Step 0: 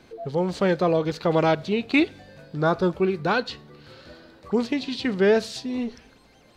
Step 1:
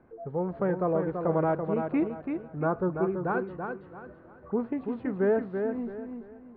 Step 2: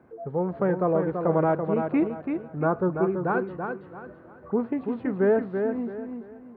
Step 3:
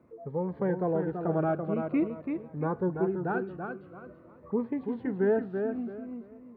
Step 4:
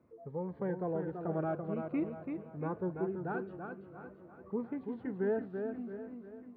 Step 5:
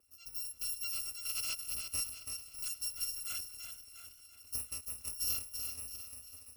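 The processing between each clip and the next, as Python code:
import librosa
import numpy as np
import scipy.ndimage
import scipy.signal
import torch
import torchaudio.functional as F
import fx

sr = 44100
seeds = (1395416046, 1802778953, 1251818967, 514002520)

y1 = scipy.signal.sosfilt(scipy.signal.butter(4, 1500.0, 'lowpass', fs=sr, output='sos'), x)
y1 = fx.echo_feedback(y1, sr, ms=334, feedback_pct=31, wet_db=-6)
y1 = y1 * 10.0 ** (-6.0 / 20.0)
y2 = scipy.signal.sosfilt(scipy.signal.butter(2, 79.0, 'highpass', fs=sr, output='sos'), y1)
y2 = y2 * 10.0 ** (3.5 / 20.0)
y3 = fx.notch_cascade(y2, sr, direction='falling', hz=0.47)
y3 = y3 * 10.0 ** (-3.5 / 20.0)
y4 = fx.peak_eq(y3, sr, hz=95.0, db=4.5, octaves=0.36)
y4 = fx.echo_feedback(y4, sr, ms=688, feedback_pct=44, wet_db=-14.5)
y4 = y4 * 10.0 ** (-7.0 / 20.0)
y5 = fx.bit_reversed(y4, sr, seeds[0], block=256)
y5 = fx.echo_warbled(y5, sr, ms=436, feedback_pct=48, rate_hz=2.8, cents=61, wet_db=-21.0)
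y5 = y5 * 10.0 ** (-3.5 / 20.0)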